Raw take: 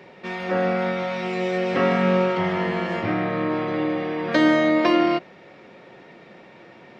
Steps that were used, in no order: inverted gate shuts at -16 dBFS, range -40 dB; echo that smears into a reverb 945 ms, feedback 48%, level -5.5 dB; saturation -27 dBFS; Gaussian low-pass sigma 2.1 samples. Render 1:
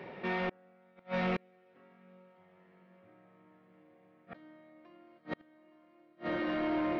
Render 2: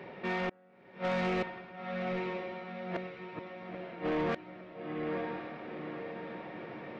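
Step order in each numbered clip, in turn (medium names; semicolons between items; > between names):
echo that smears into a reverb > inverted gate > saturation > Gaussian low-pass; Gaussian low-pass > inverted gate > echo that smears into a reverb > saturation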